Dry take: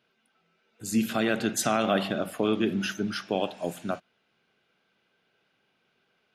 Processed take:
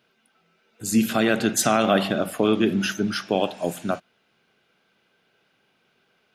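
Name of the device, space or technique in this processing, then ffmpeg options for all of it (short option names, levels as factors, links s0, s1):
exciter from parts: -filter_complex "[0:a]asplit=2[s0][s1];[s1]highpass=4300,asoftclip=type=tanh:threshold=0.0355,volume=0.316[s2];[s0][s2]amix=inputs=2:normalize=0,volume=1.88"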